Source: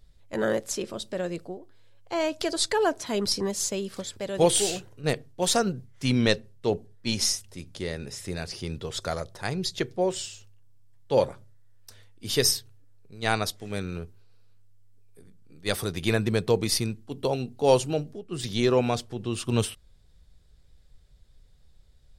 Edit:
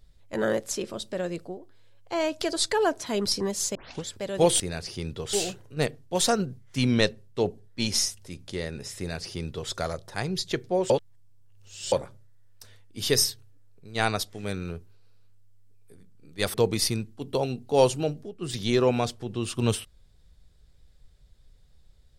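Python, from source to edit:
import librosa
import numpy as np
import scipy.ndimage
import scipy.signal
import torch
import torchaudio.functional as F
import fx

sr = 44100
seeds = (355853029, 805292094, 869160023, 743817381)

y = fx.edit(x, sr, fx.tape_start(start_s=3.75, length_s=0.3),
    fx.duplicate(start_s=8.25, length_s=0.73, to_s=4.6),
    fx.reverse_span(start_s=10.17, length_s=1.02),
    fx.cut(start_s=15.81, length_s=0.63), tone=tone)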